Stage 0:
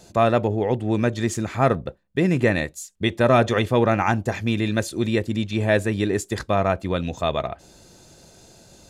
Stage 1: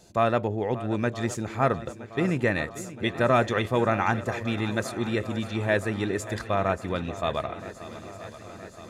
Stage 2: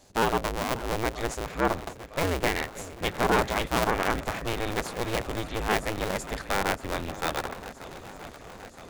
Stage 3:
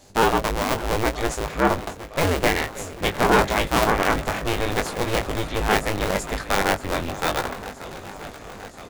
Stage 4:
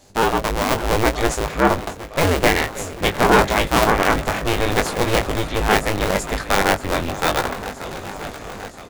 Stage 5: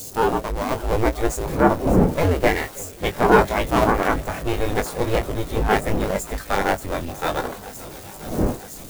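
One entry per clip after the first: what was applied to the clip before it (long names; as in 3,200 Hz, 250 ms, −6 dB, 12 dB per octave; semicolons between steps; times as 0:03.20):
dynamic equaliser 1,400 Hz, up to +4 dB, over −34 dBFS, Q 0.94; on a send: feedback echo with a long and a short gap by turns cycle 970 ms, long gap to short 1.5 to 1, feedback 64%, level −15.5 dB; on the sum: level −6 dB
sub-harmonics by changed cycles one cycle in 2, inverted; level −2 dB
double-tracking delay 20 ms −6.5 dB; level +5 dB
automatic gain control gain up to 6 dB
spike at every zero crossing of −16 dBFS; wind on the microphone 510 Hz −27 dBFS; every bin expanded away from the loudest bin 1.5 to 1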